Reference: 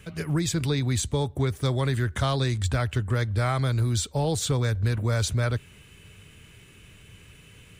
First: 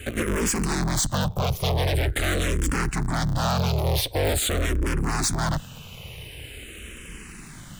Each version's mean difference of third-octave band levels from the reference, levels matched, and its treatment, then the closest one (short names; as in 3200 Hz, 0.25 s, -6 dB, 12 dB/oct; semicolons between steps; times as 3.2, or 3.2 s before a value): 10.0 dB: cycle switcher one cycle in 3, inverted; high shelf 9500 Hz +5 dB; in parallel at -10.5 dB: sine folder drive 17 dB, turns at -10.5 dBFS; on the sum: endless phaser -0.45 Hz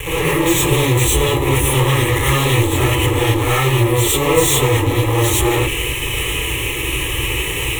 14.0 dB: fuzz box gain 52 dB, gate -50 dBFS; fixed phaser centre 990 Hz, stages 8; resonator 330 Hz, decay 0.83 s, mix 70%; non-linear reverb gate 0.13 s rising, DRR -7 dB; gain +6.5 dB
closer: first